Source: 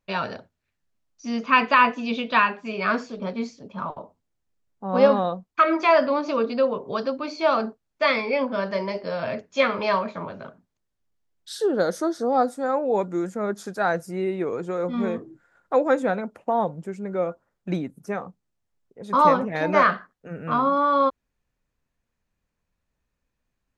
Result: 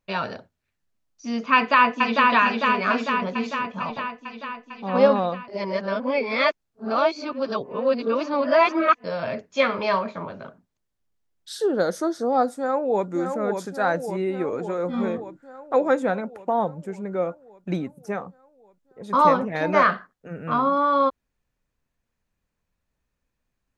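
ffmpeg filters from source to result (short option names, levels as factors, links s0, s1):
-filter_complex "[0:a]asplit=2[s0][s1];[s1]afade=t=in:st=1.55:d=0.01,afade=t=out:st=2.3:d=0.01,aecho=0:1:450|900|1350|1800|2250|2700|3150|3600|4050|4500|4950|5400:0.794328|0.55603|0.389221|0.272455|0.190718|0.133503|0.0934519|0.0654163|0.0457914|0.032054|0.0224378|0.0157065[s2];[s0][s2]amix=inputs=2:normalize=0,asplit=2[s3][s4];[s4]afade=t=in:st=12.57:d=0.01,afade=t=out:st=13.08:d=0.01,aecho=0:1:570|1140|1710|2280|2850|3420|3990|4560|5130|5700|6270:0.501187|0.350831|0.245582|0.171907|0.120335|0.0842345|0.0589642|0.0412749|0.0288924|0.0202247|0.0141573[s5];[s3][s5]amix=inputs=2:normalize=0,asplit=3[s6][s7][s8];[s6]atrim=end=5.482[s9];[s7]atrim=start=5.478:end=9.042,asetpts=PTS-STARTPTS,areverse[s10];[s8]atrim=start=9.038[s11];[s9][s10]acrossfade=d=0.004:c1=hsin:c2=hsin[s12];[s12][s11]acrossfade=d=0.004:c1=hsin:c2=hsin"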